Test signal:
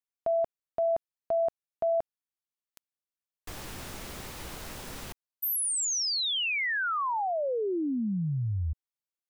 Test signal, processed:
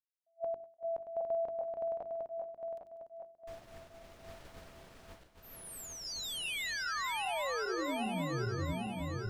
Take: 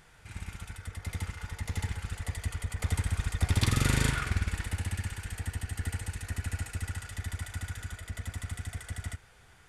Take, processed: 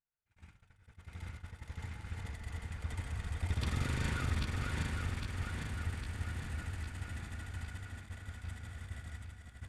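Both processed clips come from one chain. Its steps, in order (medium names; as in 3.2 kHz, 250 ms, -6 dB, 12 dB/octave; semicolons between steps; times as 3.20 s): backward echo that repeats 403 ms, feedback 76%, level -2 dB; low-pass 3.5 kHz 6 dB/octave; two-band feedback delay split 500 Hz, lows 371 ms, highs 197 ms, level -14 dB; expander -31 dBFS, range -33 dB; hum notches 50/100/150/200/250/300/350/400 Hz; attacks held to a fixed rise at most 500 dB/s; trim -9 dB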